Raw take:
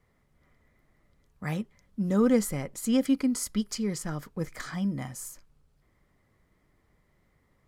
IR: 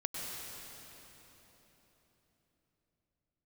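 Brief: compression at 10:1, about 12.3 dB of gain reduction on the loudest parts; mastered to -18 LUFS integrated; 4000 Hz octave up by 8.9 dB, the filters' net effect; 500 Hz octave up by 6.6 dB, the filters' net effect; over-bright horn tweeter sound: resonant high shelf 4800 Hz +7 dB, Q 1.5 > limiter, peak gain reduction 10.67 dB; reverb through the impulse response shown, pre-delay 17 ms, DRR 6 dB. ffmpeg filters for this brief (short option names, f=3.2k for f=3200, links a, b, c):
-filter_complex "[0:a]equalizer=f=500:t=o:g=7,equalizer=f=4k:t=o:g=9,acompressor=threshold=-26dB:ratio=10,asplit=2[a][b];[1:a]atrim=start_sample=2205,adelay=17[c];[b][c]afir=irnorm=-1:irlink=0,volume=-9dB[d];[a][d]amix=inputs=2:normalize=0,highshelf=f=4.8k:t=q:w=1.5:g=7,volume=14.5dB,alimiter=limit=-8dB:level=0:latency=1"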